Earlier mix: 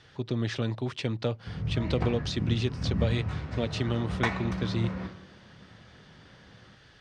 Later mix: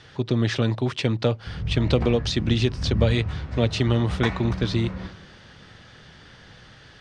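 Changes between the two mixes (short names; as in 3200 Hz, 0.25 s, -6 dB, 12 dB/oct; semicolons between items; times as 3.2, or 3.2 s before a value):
speech +7.5 dB; background: remove HPF 94 Hz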